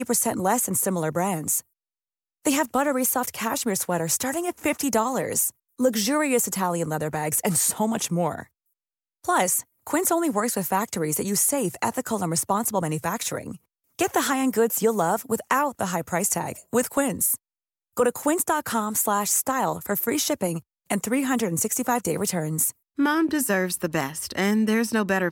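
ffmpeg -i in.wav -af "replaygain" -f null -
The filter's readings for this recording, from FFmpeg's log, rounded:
track_gain = +5.8 dB
track_peak = 0.268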